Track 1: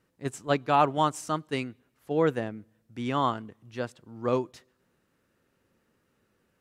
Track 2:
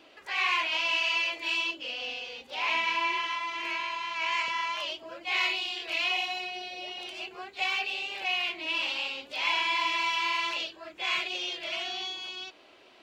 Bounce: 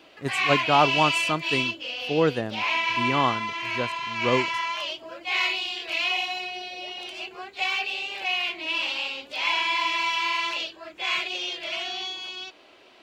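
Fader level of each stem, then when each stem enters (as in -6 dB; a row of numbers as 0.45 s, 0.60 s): +2.5 dB, +3.0 dB; 0.00 s, 0.00 s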